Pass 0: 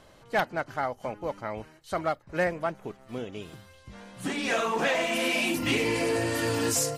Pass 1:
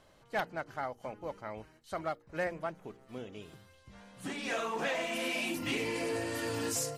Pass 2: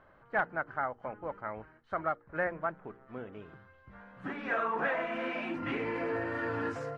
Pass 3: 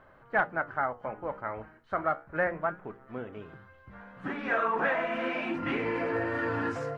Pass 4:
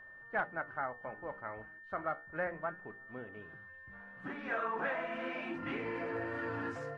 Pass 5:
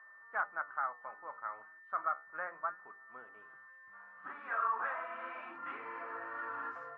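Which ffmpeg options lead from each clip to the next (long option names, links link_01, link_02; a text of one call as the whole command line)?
ffmpeg -i in.wav -af "bandreject=frequency=58.63:width_type=h:width=4,bandreject=frequency=117.26:width_type=h:width=4,bandreject=frequency=175.89:width_type=h:width=4,bandreject=frequency=234.52:width_type=h:width=4,bandreject=frequency=293.15:width_type=h:width=4,bandreject=frequency=351.78:width_type=h:width=4,bandreject=frequency=410.41:width_type=h:width=4,bandreject=frequency=469.04:width_type=h:width=4,volume=-7.5dB" out.wav
ffmpeg -i in.wav -af "lowpass=frequency=1500:width_type=q:width=2.4" out.wav
ffmpeg -i in.wav -af "flanger=delay=7.7:depth=8.8:regen=-73:speed=0.3:shape=sinusoidal,volume=8dB" out.wav
ffmpeg -i in.wav -af "aeval=exprs='val(0)+0.00708*sin(2*PI*1800*n/s)':channel_layout=same,volume=-8dB" out.wav
ffmpeg -i in.wav -af "bandpass=frequency=1200:width_type=q:width=4:csg=0,volume=7dB" out.wav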